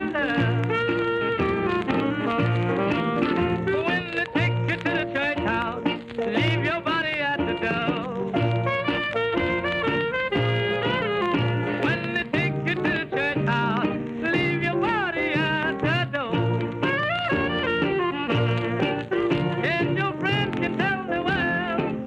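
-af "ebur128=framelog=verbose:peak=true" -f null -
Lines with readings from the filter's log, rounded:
Integrated loudness:
  I:         -24.0 LUFS
  Threshold: -34.0 LUFS
Loudness range:
  LRA:         0.8 LU
  Threshold: -44.0 LUFS
  LRA low:   -24.5 LUFS
  LRA high:  -23.6 LUFS
True peak:
  Peak:      -11.2 dBFS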